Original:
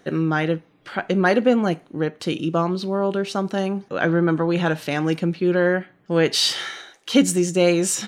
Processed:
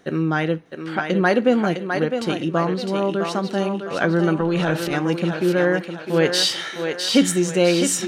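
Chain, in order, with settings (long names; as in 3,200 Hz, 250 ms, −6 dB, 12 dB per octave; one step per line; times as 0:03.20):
0:04.40–0:04.93: transient designer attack −11 dB, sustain +7 dB
feedback echo with a high-pass in the loop 657 ms, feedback 47%, high-pass 360 Hz, level −5 dB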